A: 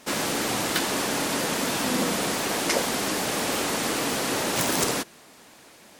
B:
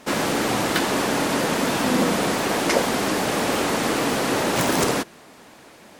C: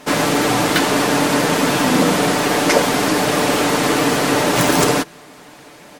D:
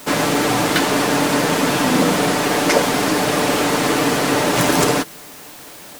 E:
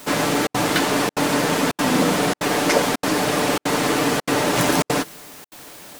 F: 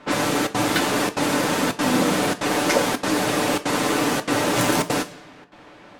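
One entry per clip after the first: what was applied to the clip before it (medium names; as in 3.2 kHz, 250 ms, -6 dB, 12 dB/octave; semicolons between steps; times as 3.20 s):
treble shelf 2.9 kHz -8 dB; trim +6 dB
comb 6.8 ms, depth 46%; trim +5 dB
added noise white -39 dBFS; trim -1 dB
trance gate "xxxxxx.xxxxxxx.x" 193 bpm -60 dB; trim -2.5 dB
two-slope reverb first 0.27 s, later 1.7 s, from -18 dB, DRR 8 dB; level-controlled noise filter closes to 2 kHz, open at -16 dBFS; trim -2 dB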